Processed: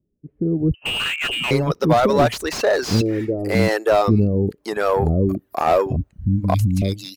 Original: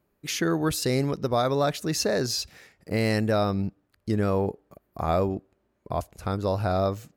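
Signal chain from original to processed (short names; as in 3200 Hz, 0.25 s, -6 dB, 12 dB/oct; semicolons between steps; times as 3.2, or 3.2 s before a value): reverb removal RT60 0.59 s; 3.01–3.55 resonant low shelf 260 Hz -8.5 dB, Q 3; 5.96–6.82 Chebyshev band-stop 290–2100 Hz, order 5; AGC gain up to 12.5 dB; soft clip -5.5 dBFS, distortion -20 dB; bands offset in time lows, highs 0.58 s, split 400 Hz; 0.74–1.51 inverted band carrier 3000 Hz; slew limiter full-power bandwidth 170 Hz; gain +2 dB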